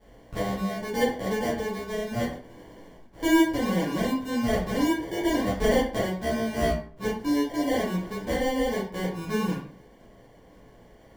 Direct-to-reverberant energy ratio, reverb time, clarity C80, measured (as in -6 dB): -9.0 dB, 0.50 s, 9.5 dB